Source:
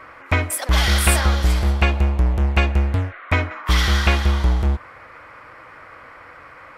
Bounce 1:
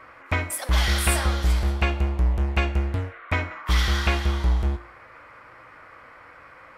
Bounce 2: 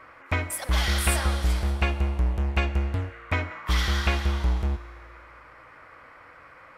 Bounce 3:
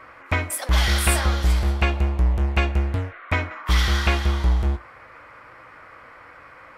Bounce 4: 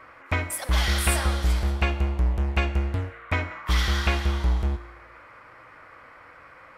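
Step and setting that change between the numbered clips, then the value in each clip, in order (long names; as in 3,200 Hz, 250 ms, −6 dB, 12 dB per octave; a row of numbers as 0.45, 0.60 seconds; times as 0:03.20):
tuned comb filter, decay: 0.48, 2.1, 0.2, 1 seconds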